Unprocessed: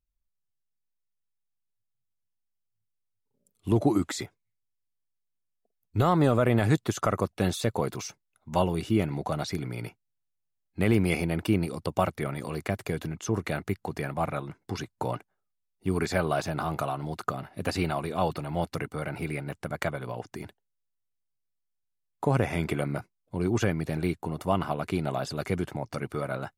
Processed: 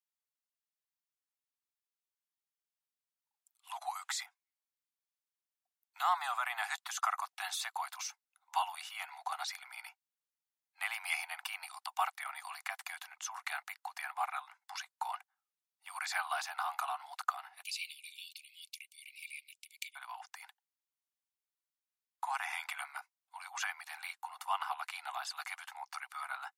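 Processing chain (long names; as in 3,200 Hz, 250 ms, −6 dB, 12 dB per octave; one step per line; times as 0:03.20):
Butterworth high-pass 750 Hz 96 dB per octave, from 0:17.62 2,300 Hz, from 0:19.95 770 Hz
level −2.5 dB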